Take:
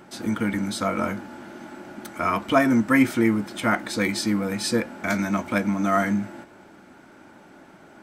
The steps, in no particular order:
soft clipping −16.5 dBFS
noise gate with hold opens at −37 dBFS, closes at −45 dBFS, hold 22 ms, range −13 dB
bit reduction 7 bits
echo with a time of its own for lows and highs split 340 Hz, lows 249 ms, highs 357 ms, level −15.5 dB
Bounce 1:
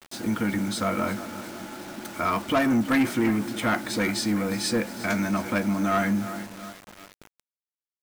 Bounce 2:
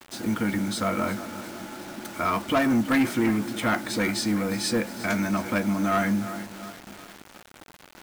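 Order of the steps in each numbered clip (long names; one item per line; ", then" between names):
noise gate with hold, then echo with a time of its own for lows and highs, then bit reduction, then soft clipping
echo with a time of its own for lows and highs, then soft clipping, then bit reduction, then noise gate with hold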